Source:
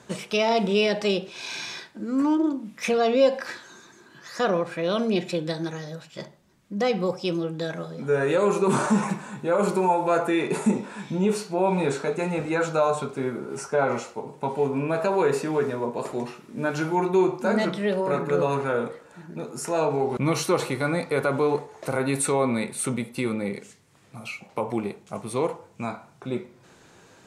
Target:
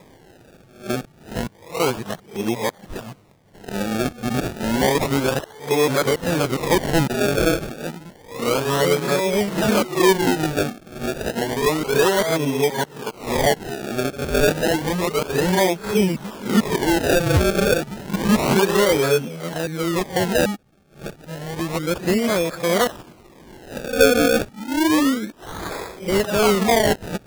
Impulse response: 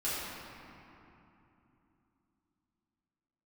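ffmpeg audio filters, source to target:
-af "areverse,acrusher=samples=30:mix=1:aa=0.000001:lfo=1:lforange=30:lforate=0.3,volume=4.5dB"

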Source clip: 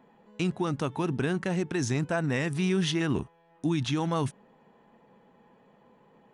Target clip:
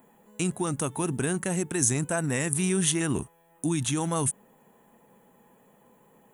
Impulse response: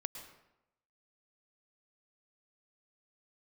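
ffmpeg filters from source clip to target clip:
-af "aexciter=amount=14.7:drive=5.1:freq=7.3k"

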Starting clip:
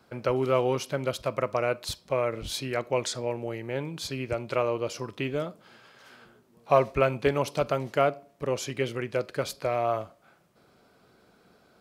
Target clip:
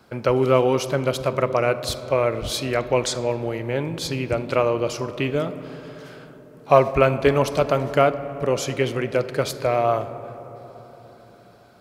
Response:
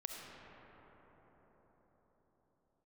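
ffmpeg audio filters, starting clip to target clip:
-filter_complex "[0:a]asplit=2[a][b];[1:a]atrim=start_sample=2205,asetrate=61740,aresample=44100,lowshelf=f=450:g=6.5[c];[b][c]afir=irnorm=-1:irlink=0,volume=-6.5dB[d];[a][d]amix=inputs=2:normalize=0,volume=4.5dB"

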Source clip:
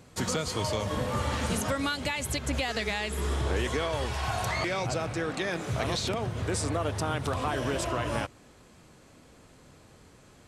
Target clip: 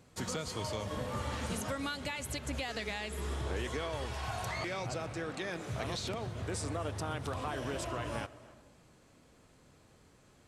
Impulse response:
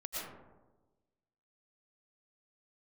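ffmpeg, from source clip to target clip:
-filter_complex "[0:a]asplit=2[a][b];[1:a]atrim=start_sample=2205,adelay=125[c];[b][c]afir=irnorm=-1:irlink=0,volume=-18.5dB[d];[a][d]amix=inputs=2:normalize=0,volume=-7.5dB"

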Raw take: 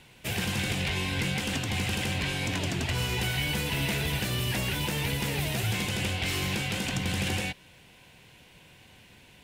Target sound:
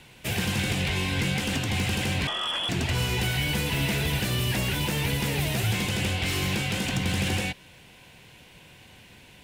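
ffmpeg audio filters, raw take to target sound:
-filter_complex "[0:a]asettb=1/sr,asplit=3[a][b][c];[a]atrim=end=2.274[d];[b]atrim=start=2.27:end=2.69,asetpts=PTS-STARTPTS,afade=t=in:d=0.004:c=qsin,afade=t=out:st=0.416:d=0.004:c=qsin,lowpass=f=3k:t=q:w=0.5098,lowpass=f=3k:t=q:w=0.6013,lowpass=f=3k:t=q:w=0.9,lowpass=f=3k:t=q:w=2.563,afreqshift=-3500[e];[c]atrim=start=2.686[f];[d][e]acrossfade=d=0.004:c1=hsin:c2=qsin[g];[g][f]acrossfade=d=0.004:c1=qsin:c2=hsin,acrossover=split=430[h][i];[i]asoftclip=type=tanh:threshold=-26.5dB[j];[h][j]amix=inputs=2:normalize=0,volume=3.5dB"

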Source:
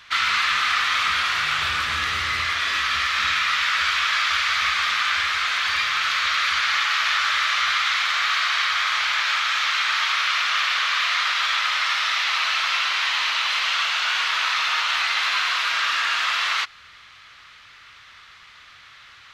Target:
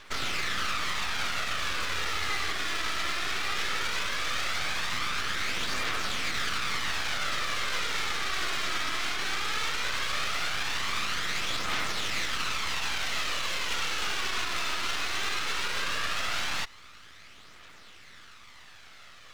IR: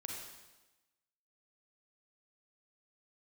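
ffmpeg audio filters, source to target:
-af "aeval=exprs='max(val(0),0)':c=same,alimiter=limit=-18dB:level=0:latency=1:release=62,aphaser=in_gain=1:out_gain=1:delay=3.1:decay=0.33:speed=0.17:type=triangular,volume=-1dB"

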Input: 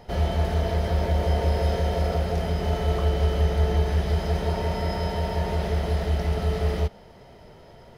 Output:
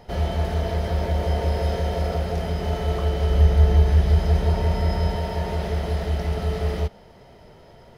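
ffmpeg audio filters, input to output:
-filter_complex "[0:a]asettb=1/sr,asplit=3[a][b][c];[a]atrim=end=3.304[d];[b]atrim=start=3.3:end=5.16,asetpts=PTS-STARTPTS,afade=t=in:d=0.004:c=qsin,afade=t=out:st=1.856:d=0.004:c=qsin,lowshelf=f=110:g=10[e];[c]atrim=start=5.156[f];[d][e]acrossfade=d=0.004:c1=hsin:c2=qsin[g];[g][f]acrossfade=d=0.004:c1=qsin:c2=hsin"

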